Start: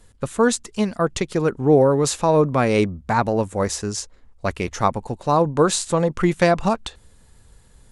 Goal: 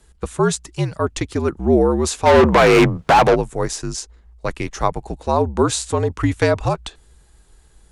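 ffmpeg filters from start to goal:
-filter_complex "[0:a]afreqshift=-66,asplit=3[a][b][c];[a]afade=t=out:st=2.25:d=0.02[d];[b]asplit=2[e][f];[f]highpass=f=720:p=1,volume=31dB,asoftclip=type=tanh:threshold=-3.5dB[g];[e][g]amix=inputs=2:normalize=0,lowpass=f=2.2k:p=1,volume=-6dB,afade=t=in:st=2.25:d=0.02,afade=t=out:st=3.34:d=0.02[h];[c]afade=t=in:st=3.34:d=0.02[i];[d][h][i]amix=inputs=3:normalize=0"

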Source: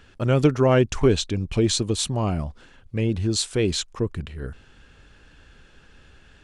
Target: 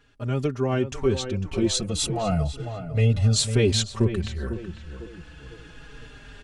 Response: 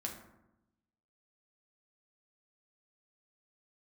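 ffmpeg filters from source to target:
-filter_complex "[0:a]asettb=1/sr,asplit=3[a][b][c];[a]atrim=end=1.744[d];[b]atrim=start=1.74:end=3.35,asetpts=PTS-STARTPTS,afade=t=in:d=0.004:c=qsin,afade=t=out:st=1.606:d=0.004:c=qsin,aecho=1:1:1.5:0.82,atrim=end_sample=71001[e];[c]atrim=start=3.346[f];[d][e]acrossfade=d=0.004:c1=hsin:c2=qsin[g];[g][f]acrossfade=d=0.004:c1=qsin:c2=hsin,asplit=2[h][i];[i]adelay=500,lowpass=f=2.2k:p=1,volume=-10.5dB,asplit=2[j][k];[k]adelay=500,lowpass=f=2.2k:p=1,volume=0.36,asplit=2[l][m];[m]adelay=500,lowpass=f=2.2k:p=1,volume=0.36,asplit=2[n][o];[o]adelay=500,lowpass=f=2.2k:p=1,volume=0.36[p];[h][j][l][n][p]amix=inputs=5:normalize=0,dynaudnorm=f=250:g=9:m=15dB,asplit=2[q][r];[r]adelay=4.4,afreqshift=-0.33[s];[q][s]amix=inputs=2:normalize=1,volume=-5dB"

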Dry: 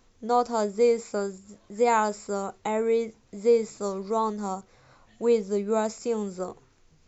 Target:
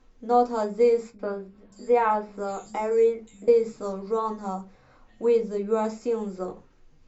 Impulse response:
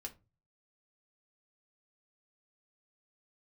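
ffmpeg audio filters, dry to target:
-filter_complex "[0:a]aemphasis=mode=reproduction:type=50fm,asettb=1/sr,asplit=3[a][b][c];[a]atrim=end=1.104[d];[b]atrim=start=1.1:end=3.48,asetpts=PTS-STARTPTS,afade=t=in:d=0.004:c=qsin,afade=t=out:st=2.376:d=0.004:c=qsin,acrossover=split=180|4100[e][f][g];[f]adelay=90[h];[g]adelay=620[i];[e][h][i]amix=inputs=3:normalize=0,atrim=end_sample=104958[j];[c]atrim=start=3.476[k];[d][j]acrossfade=d=0.004:c1=hsin:c2=qsin[l];[l][k]acrossfade=d=0.004:c1=qsin:c2=hsin[m];[1:a]atrim=start_sample=2205[n];[m][n]afir=irnorm=-1:irlink=0,volume=3.5dB"

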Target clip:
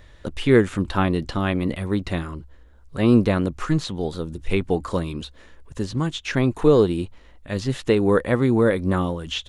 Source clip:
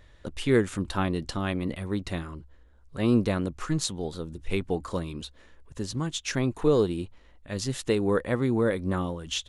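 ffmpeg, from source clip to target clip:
-filter_complex "[0:a]acrossover=split=3800[a][b];[b]acompressor=threshold=-49dB:ratio=4:attack=1:release=60[c];[a][c]amix=inputs=2:normalize=0,volume=6.5dB"

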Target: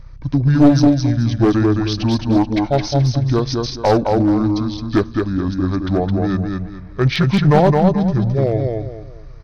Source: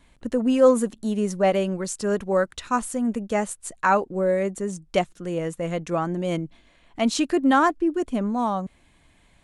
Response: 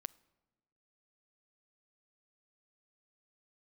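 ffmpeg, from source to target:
-filter_complex "[0:a]aeval=exprs='val(0)+0.00891*(sin(2*PI*50*n/s)+sin(2*PI*2*50*n/s)/2+sin(2*PI*3*50*n/s)/3+sin(2*PI*4*50*n/s)/4+sin(2*PI*5*50*n/s)/5)':c=same,asetrate=24750,aresample=44100,atempo=1.7818,aecho=1:1:215|430|645|860:0.631|0.189|0.0568|0.017,asplit=2[a][b];[1:a]atrim=start_sample=2205[c];[b][c]afir=irnorm=-1:irlink=0,volume=7dB[d];[a][d]amix=inputs=2:normalize=0,aeval=exprs='clip(val(0),-1,0.335)':c=same,volume=-1dB"

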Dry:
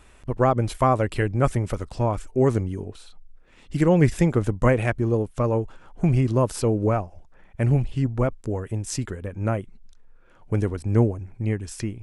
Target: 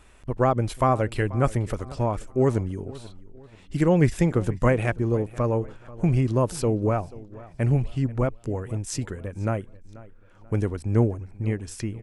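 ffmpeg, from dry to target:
-filter_complex "[0:a]asplit=2[a][b];[b]adelay=486,lowpass=f=4.5k:p=1,volume=-19.5dB,asplit=2[c][d];[d]adelay=486,lowpass=f=4.5k:p=1,volume=0.39,asplit=2[e][f];[f]adelay=486,lowpass=f=4.5k:p=1,volume=0.39[g];[a][c][e][g]amix=inputs=4:normalize=0,volume=-1.5dB"

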